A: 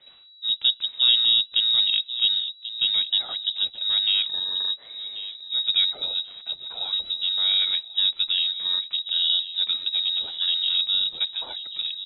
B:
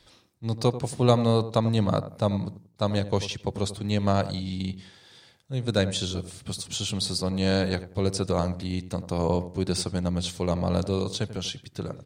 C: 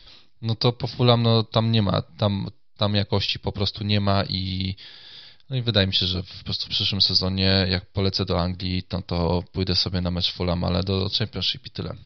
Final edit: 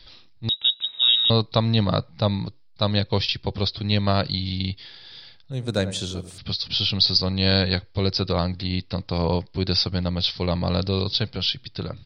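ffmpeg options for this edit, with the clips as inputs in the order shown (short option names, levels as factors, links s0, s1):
-filter_complex "[2:a]asplit=3[s0][s1][s2];[s0]atrim=end=0.492[s3];[0:a]atrim=start=0.488:end=1.302[s4];[s1]atrim=start=1.298:end=5.522[s5];[1:a]atrim=start=5.518:end=6.382[s6];[s2]atrim=start=6.378[s7];[s3][s4]acrossfade=d=0.004:c1=hsin:c2=hsin[s8];[s8][s5]acrossfade=d=0.004:c1=hsin:c2=hsin[s9];[s9][s6]acrossfade=d=0.004:c1=hsin:c2=hsin[s10];[s10][s7]acrossfade=d=0.004:c1=hsin:c2=hsin"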